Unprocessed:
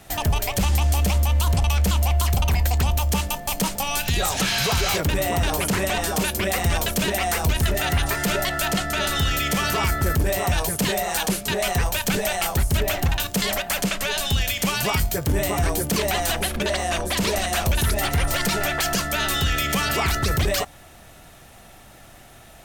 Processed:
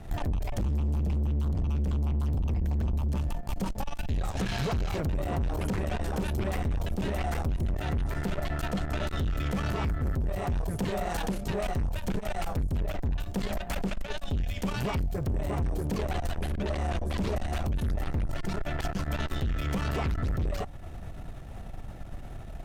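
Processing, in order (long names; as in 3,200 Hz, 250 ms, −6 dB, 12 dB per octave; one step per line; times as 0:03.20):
spectral tilt −3.5 dB per octave
downward compressor 2.5 to 1, threshold −23 dBFS, peak gain reduction 14 dB
tube saturation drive 25 dB, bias 0.6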